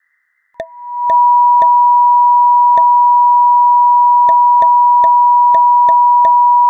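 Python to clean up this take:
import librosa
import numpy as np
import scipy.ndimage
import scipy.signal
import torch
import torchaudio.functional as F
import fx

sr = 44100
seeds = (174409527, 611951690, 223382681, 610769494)

y = fx.notch(x, sr, hz=970.0, q=30.0)
y = fx.noise_reduce(y, sr, print_start_s=0.0, print_end_s=0.5, reduce_db=24.0)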